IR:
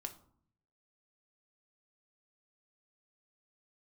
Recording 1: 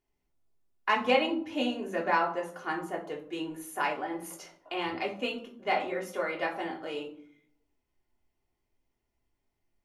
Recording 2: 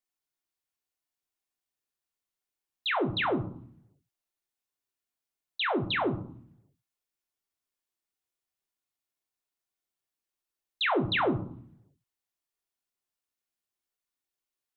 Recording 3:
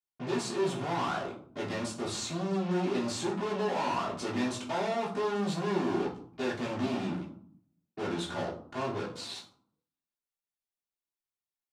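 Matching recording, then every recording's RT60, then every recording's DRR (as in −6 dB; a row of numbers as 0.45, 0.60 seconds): 2; 0.60, 0.60, 0.55 seconds; −2.0, 4.5, −10.5 decibels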